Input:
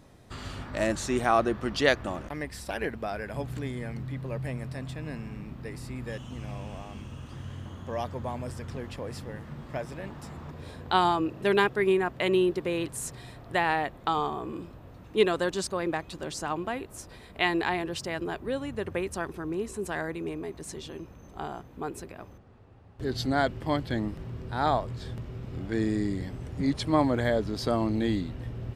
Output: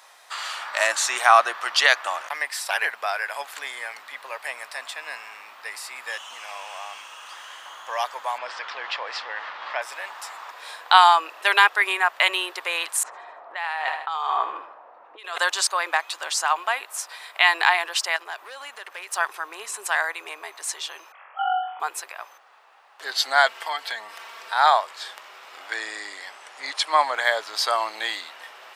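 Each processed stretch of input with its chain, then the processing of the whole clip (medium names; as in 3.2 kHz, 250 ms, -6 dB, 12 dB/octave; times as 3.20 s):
8.38–9.82 s: low-pass 4.6 kHz 24 dB/octave + level flattener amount 50%
13.03–15.38 s: level-controlled noise filter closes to 560 Hz, open at -20.5 dBFS + feedback delay 77 ms, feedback 47%, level -15 dB + compressor with a negative ratio -35 dBFS
18.16–19.16 s: compression 10:1, threshold -34 dBFS + overload inside the chain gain 33 dB
21.12–21.80 s: formants replaced by sine waves + high-pass 710 Hz + flutter echo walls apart 3.7 m, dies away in 0.69 s
23.47–24.54 s: comb 4.4 ms, depth 69% + compression 10:1, threshold -29 dBFS + tape noise reduction on one side only encoder only
25.74–27.27 s: Chebyshev low-pass 11 kHz + treble shelf 8.4 kHz -5.5 dB
whole clip: high-pass 850 Hz 24 dB/octave; loudness maximiser +14 dB; trim -1 dB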